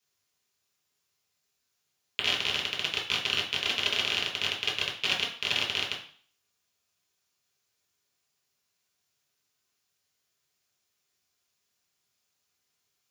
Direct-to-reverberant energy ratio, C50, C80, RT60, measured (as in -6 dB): -3.5 dB, 7.5 dB, 11.5 dB, 0.50 s